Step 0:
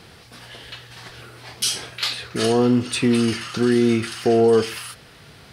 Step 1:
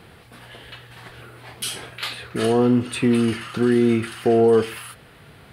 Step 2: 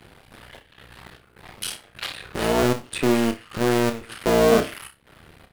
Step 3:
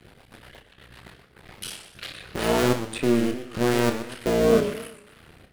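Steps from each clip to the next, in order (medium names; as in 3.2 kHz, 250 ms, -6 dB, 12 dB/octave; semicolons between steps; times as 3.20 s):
peaking EQ 5.6 kHz -13.5 dB 0.96 oct
cycle switcher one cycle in 2, muted; trance gate "xxx.xx.xx.x" 77 bpm -12 dB; on a send: flutter echo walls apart 5.2 m, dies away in 0.21 s
rotary cabinet horn 8 Hz, later 0.8 Hz, at 1.12 s; modulated delay 121 ms, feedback 37%, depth 177 cents, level -11 dB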